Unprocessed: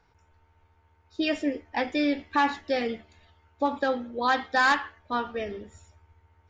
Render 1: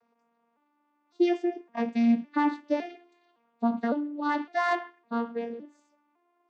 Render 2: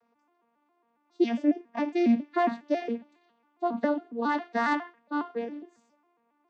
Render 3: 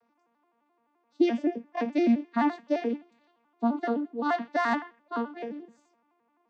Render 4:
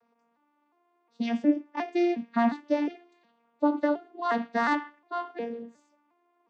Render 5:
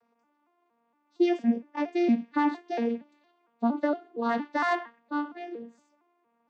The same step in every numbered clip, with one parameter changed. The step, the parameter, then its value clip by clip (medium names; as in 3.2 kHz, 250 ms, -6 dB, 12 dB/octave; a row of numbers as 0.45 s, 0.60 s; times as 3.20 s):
vocoder on a broken chord, a note every: 559 ms, 137 ms, 86 ms, 359 ms, 231 ms